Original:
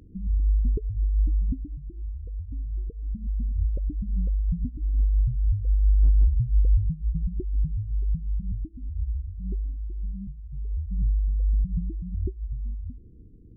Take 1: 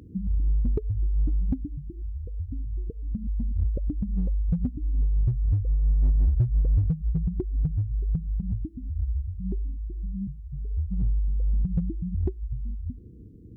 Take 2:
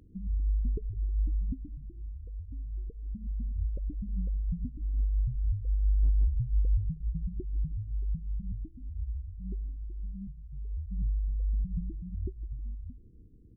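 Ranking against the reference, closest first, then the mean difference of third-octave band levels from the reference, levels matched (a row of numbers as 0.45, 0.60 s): 2, 1; 1.0, 2.5 dB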